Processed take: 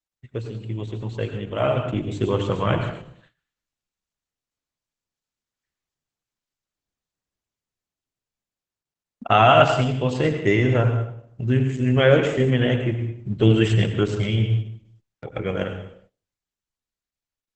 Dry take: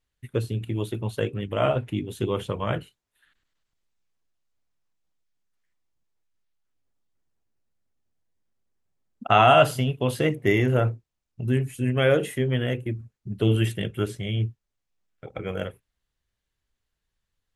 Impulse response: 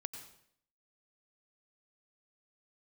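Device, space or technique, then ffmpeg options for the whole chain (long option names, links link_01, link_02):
speakerphone in a meeting room: -filter_complex "[1:a]atrim=start_sample=2205[link_01];[0:a][link_01]afir=irnorm=-1:irlink=0,dynaudnorm=framelen=310:gausssize=13:maxgain=15.5dB,agate=range=-16dB:threshold=-52dB:ratio=16:detection=peak,volume=-1dB" -ar 48000 -c:a libopus -b:a 12k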